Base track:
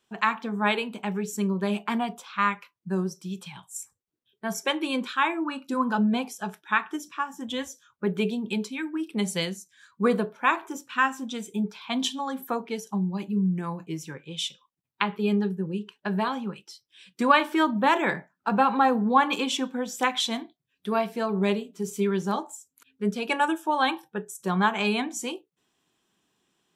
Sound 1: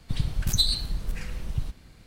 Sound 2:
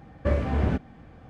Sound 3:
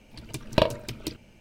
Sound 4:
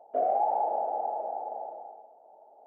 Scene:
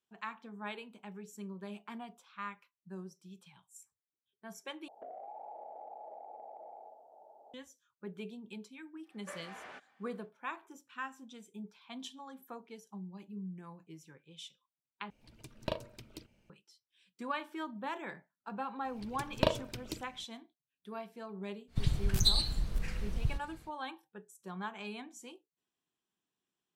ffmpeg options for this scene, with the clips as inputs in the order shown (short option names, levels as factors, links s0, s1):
-filter_complex "[3:a]asplit=2[s0][s1];[0:a]volume=0.126[s2];[4:a]acompressor=threshold=0.00708:ratio=6:attack=3.2:release=140:knee=1:detection=peak[s3];[2:a]highpass=1100[s4];[1:a]highshelf=f=6700:g=-4[s5];[s2]asplit=3[s6][s7][s8];[s6]atrim=end=4.884[s9];[s3]atrim=end=2.66,asetpts=PTS-STARTPTS,volume=0.708[s10];[s7]atrim=start=7.536:end=15.104[s11];[s0]atrim=end=1.4,asetpts=PTS-STARTPTS,volume=0.168[s12];[s8]atrim=start=16.496[s13];[s4]atrim=end=1.29,asetpts=PTS-STARTPTS,volume=0.355,afade=t=in:d=0.1,afade=t=out:st=1.19:d=0.1,adelay=9020[s14];[s1]atrim=end=1.4,asetpts=PTS-STARTPTS,volume=0.422,afade=t=in:d=0.004:c=hsin,afade=t=out:st=1.396:d=0.004:c=hsin,adelay=18850[s15];[s5]atrim=end=2.06,asetpts=PTS-STARTPTS,volume=0.668,afade=t=in:d=0.1,afade=t=out:st=1.96:d=0.1,adelay=21670[s16];[s9][s10]acrossfade=d=0.004:c1=hsin:c2=hsin[s17];[s17][s11]acrossfade=d=0.004:c1=hsin:c2=hsin[s18];[s18][s12]acrossfade=d=0.004:c1=hsin:c2=hsin[s19];[s19][s13]acrossfade=d=0.004:c1=hsin:c2=hsin[s20];[s20][s14][s15][s16]amix=inputs=4:normalize=0"